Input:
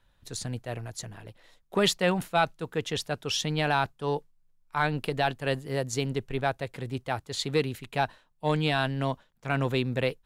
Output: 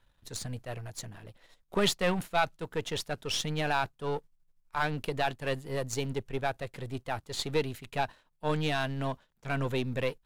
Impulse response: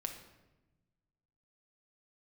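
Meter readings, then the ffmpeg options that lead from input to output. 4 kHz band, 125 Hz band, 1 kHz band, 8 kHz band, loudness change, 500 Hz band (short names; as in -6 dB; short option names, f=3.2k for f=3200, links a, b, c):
-3.0 dB, -4.0 dB, -3.5 dB, -2.5 dB, -3.5 dB, -3.5 dB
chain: -af "aeval=exprs='if(lt(val(0),0),0.447*val(0),val(0))':c=same"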